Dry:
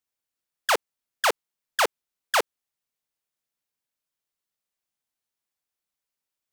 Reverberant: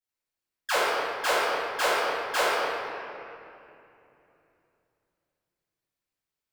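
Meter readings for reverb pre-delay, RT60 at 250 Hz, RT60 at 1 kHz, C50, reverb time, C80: 4 ms, 4.1 s, 2.6 s, −4.0 dB, 2.7 s, −2.0 dB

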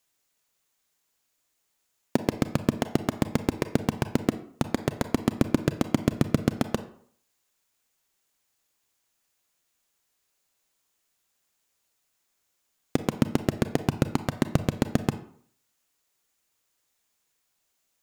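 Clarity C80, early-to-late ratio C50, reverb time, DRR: 16.5 dB, 13.0 dB, 0.60 s, 10.5 dB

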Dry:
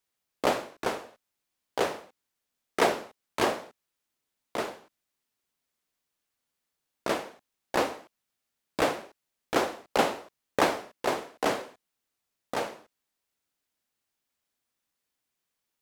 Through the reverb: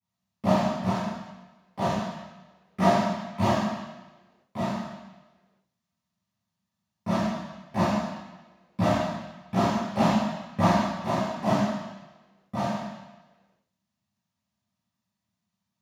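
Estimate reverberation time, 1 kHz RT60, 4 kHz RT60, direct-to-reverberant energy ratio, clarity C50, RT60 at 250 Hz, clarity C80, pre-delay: 1.2 s, 1.1 s, 1.2 s, −15.5 dB, −1.5 dB, 1.0 s, 1.5 dB, 3 ms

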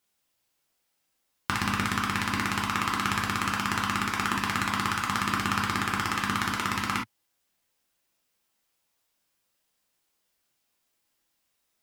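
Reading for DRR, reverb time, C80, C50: −1.5 dB, non-exponential decay, 45.0 dB, 8.0 dB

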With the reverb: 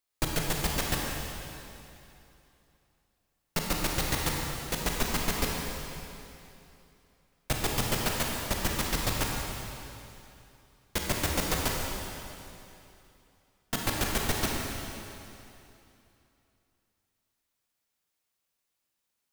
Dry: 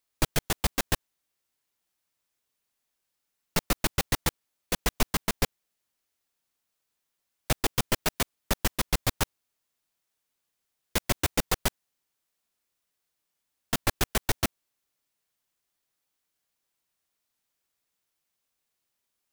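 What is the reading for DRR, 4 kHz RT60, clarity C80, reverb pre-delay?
−1.5 dB, 2.7 s, 1.0 dB, 22 ms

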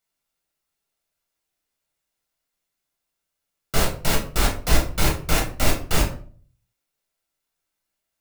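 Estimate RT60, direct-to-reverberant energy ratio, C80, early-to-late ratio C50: 0.45 s, −1.5 dB, 13.5 dB, 8.5 dB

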